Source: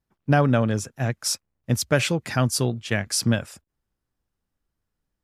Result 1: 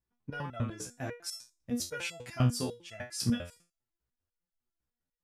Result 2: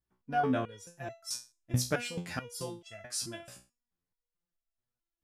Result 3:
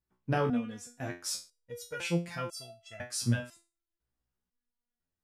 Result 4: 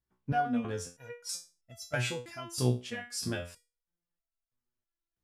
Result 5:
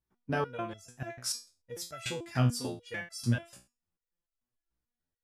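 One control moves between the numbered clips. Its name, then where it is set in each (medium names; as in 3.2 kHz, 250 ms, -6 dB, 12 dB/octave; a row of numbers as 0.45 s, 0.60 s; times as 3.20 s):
resonator arpeggio, rate: 10 Hz, 4.6 Hz, 2 Hz, 3.1 Hz, 6.8 Hz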